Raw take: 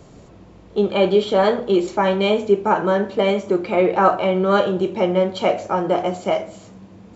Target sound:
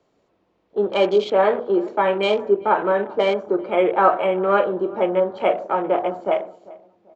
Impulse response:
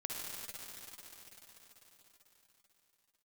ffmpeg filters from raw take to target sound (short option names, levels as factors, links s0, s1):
-filter_complex "[0:a]acrossover=split=280 5700:gain=0.178 1 0.178[s0][s1][s2];[s0][s1][s2]amix=inputs=3:normalize=0,afwtdn=0.0224,asplit=2[s3][s4];[s4]adelay=392,lowpass=f=1100:p=1,volume=0.1,asplit=2[s5][s6];[s6]adelay=392,lowpass=f=1100:p=1,volume=0.35,asplit=2[s7][s8];[s8]adelay=392,lowpass=f=1100:p=1,volume=0.35[s9];[s3][s5][s7][s9]amix=inputs=4:normalize=0"